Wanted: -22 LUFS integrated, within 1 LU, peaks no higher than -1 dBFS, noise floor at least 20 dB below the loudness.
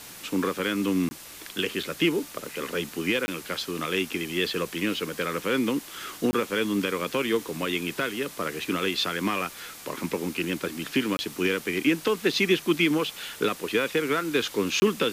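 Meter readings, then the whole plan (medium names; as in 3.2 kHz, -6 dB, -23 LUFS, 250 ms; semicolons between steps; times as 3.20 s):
dropouts 5; longest dropout 20 ms; noise floor -44 dBFS; noise floor target -47 dBFS; loudness -27.0 LUFS; peak level -10.0 dBFS; loudness target -22.0 LUFS
-> interpolate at 1.09/3.26/6.31/11.17/14.80 s, 20 ms; noise print and reduce 6 dB; trim +5 dB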